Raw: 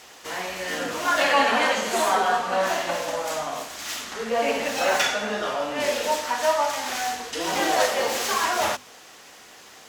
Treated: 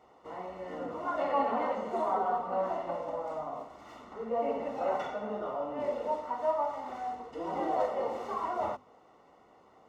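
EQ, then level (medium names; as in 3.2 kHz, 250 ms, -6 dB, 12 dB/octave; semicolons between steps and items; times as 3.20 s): Savitzky-Golay filter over 65 samples; -7.0 dB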